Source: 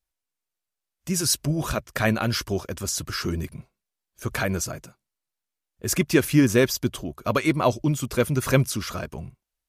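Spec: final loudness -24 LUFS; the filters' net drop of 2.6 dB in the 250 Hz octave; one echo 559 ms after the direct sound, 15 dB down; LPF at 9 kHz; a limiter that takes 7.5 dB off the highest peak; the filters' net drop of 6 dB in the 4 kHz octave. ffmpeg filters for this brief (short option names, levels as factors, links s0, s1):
-af "lowpass=9000,equalizer=f=250:t=o:g=-3.5,equalizer=f=4000:t=o:g=-8,alimiter=limit=0.178:level=0:latency=1,aecho=1:1:559:0.178,volume=1.68"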